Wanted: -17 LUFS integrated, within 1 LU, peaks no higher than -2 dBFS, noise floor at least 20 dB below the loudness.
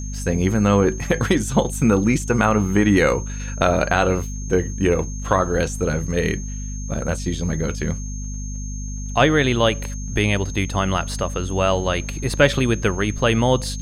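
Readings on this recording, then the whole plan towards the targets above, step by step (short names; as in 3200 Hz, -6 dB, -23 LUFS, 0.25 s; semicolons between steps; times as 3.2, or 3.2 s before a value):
hum 50 Hz; harmonics up to 250 Hz; hum level -26 dBFS; steady tone 6400 Hz; tone level -36 dBFS; loudness -20.5 LUFS; peak -2.0 dBFS; loudness target -17.0 LUFS
-> de-hum 50 Hz, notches 5; notch 6400 Hz, Q 30; gain +3.5 dB; limiter -2 dBFS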